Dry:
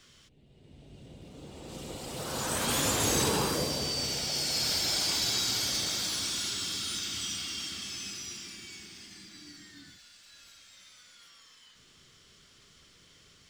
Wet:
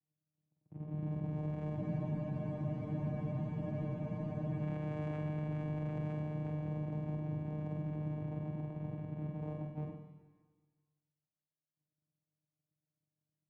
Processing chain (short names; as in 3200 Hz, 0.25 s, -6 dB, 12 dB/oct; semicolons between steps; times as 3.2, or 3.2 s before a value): gate -51 dBFS, range -18 dB; Chebyshev low-pass 930 Hz, order 8; bell 530 Hz -9 dB 2.5 oct; sample leveller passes 2; compressor, threshold -46 dBFS, peak gain reduction 15.5 dB; sample leveller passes 3; vocoder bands 4, saw 152 Hz; flutter echo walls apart 8.2 m, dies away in 0.68 s; digital reverb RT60 1.6 s, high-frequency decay 1×, pre-delay 15 ms, DRR 9 dB; spectral freeze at 1.79, 2.81 s; gain +7 dB